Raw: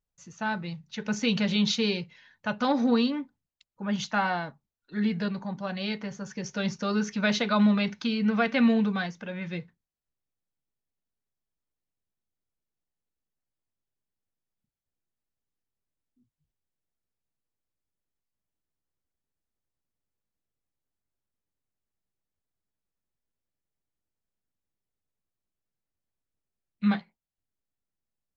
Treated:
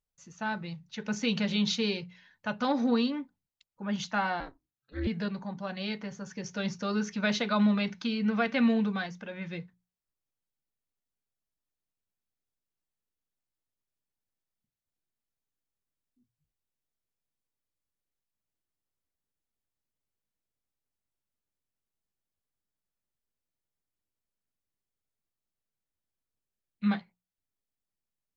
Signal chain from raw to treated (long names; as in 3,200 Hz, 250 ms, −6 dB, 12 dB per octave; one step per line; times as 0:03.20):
mains-hum notches 60/120/180 Hz
0:04.40–0:05.07: ring modulation 130 Hz
level −3 dB